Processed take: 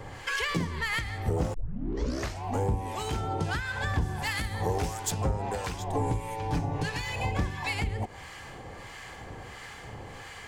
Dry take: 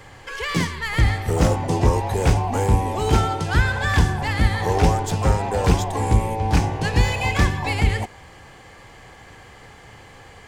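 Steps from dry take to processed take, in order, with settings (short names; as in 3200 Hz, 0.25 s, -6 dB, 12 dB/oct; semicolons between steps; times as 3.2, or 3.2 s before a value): 4.01–5.1 high shelf 8200 Hz -> 5700 Hz +11.5 dB; 5.94–7.12 comb 6.9 ms, depth 62%; compressor 10:1, threshold -28 dBFS, peak gain reduction 17.5 dB; harmonic tremolo 1.5 Hz, depth 70%, crossover 1000 Hz; 1.54 tape start 0.90 s; gain +4.5 dB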